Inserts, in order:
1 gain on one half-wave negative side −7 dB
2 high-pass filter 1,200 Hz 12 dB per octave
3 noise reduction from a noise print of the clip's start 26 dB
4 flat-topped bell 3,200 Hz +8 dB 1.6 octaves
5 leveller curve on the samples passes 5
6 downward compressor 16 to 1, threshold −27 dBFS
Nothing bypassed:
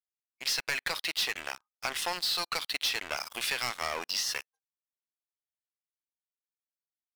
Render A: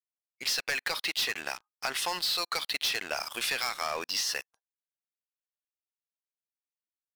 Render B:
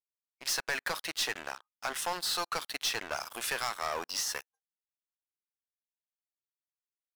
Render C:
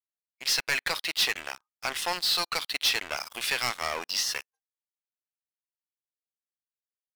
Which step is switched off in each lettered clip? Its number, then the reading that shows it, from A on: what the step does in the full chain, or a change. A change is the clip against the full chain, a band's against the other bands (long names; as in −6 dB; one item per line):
1, distortion level −9 dB
4, 4 kHz band −5.0 dB
6, average gain reduction 2.5 dB